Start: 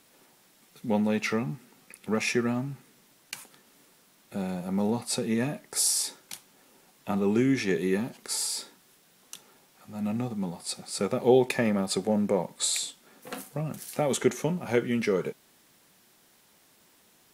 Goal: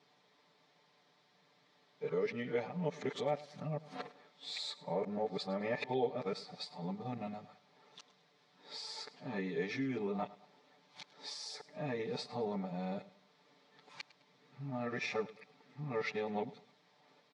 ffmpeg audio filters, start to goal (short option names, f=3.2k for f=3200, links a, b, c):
-af "areverse,aecho=1:1:6.8:0.84,acompressor=threshold=-28dB:ratio=2,highpass=190,equalizer=f=310:t=q:w=4:g=-10,equalizer=f=1.5k:t=q:w=4:g=-7,equalizer=f=2.8k:t=q:w=4:g=-8,lowpass=f=4.3k:w=0.5412,lowpass=f=4.3k:w=1.3066,aecho=1:1:104|208|312:0.119|0.0416|0.0146,volume=-5dB"